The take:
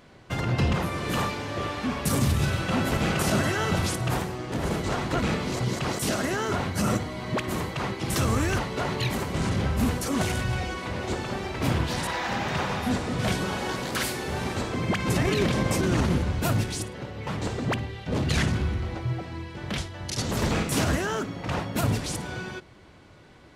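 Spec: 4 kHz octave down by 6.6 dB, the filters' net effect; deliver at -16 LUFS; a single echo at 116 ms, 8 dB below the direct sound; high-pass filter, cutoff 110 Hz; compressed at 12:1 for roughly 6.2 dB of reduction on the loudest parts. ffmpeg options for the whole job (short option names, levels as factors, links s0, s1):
-af "highpass=110,equalizer=f=4000:t=o:g=-9,acompressor=threshold=0.0447:ratio=12,aecho=1:1:116:0.398,volume=6.31"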